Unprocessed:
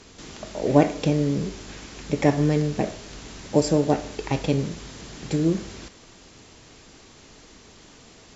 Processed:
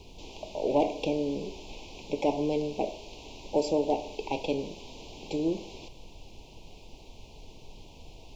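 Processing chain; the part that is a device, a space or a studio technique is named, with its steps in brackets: aircraft cabin announcement (BPF 390–3800 Hz; soft clip -15.5 dBFS, distortion -12 dB; brown noise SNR 15 dB); elliptic band-stop 940–2500 Hz, stop band 50 dB

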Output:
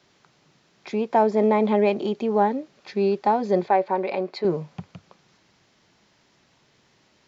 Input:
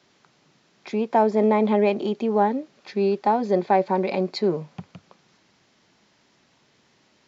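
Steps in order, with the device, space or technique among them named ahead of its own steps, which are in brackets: low shelf boost with a cut just above (low shelf 110 Hz +6 dB; bell 240 Hz -3 dB 0.59 oct); 3.68–4.45 tone controls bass -13 dB, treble -10 dB

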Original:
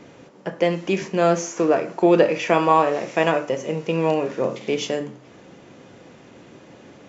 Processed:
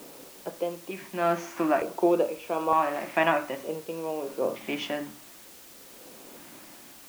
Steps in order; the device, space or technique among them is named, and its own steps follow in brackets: shortwave radio (BPF 270–2700 Hz; tremolo 0.62 Hz, depth 74%; LFO notch square 0.55 Hz 460–1900 Hz; white noise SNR 20 dB)

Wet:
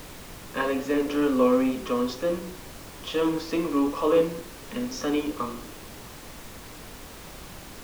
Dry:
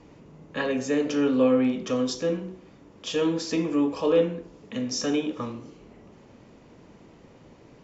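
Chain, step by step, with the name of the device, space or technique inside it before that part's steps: horn gramophone (BPF 190–3900 Hz; bell 1100 Hz +9 dB 0.31 oct; wow and flutter; pink noise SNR 15 dB)

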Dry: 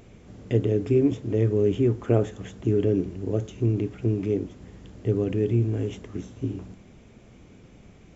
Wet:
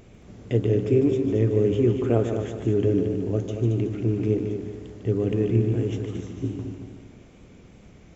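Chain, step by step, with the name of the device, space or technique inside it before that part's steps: multi-head tape echo (multi-head echo 75 ms, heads second and third, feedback 46%, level -8 dB; wow and flutter 23 cents)

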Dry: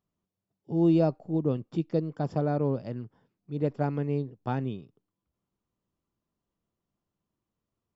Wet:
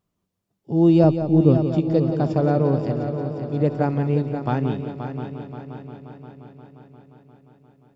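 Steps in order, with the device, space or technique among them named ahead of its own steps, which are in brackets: 1.04–1.58 tilt -2 dB/oct; multi-head tape echo (multi-head echo 0.176 s, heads first and third, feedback 68%, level -10 dB; wow and flutter 21 cents); gain +7 dB

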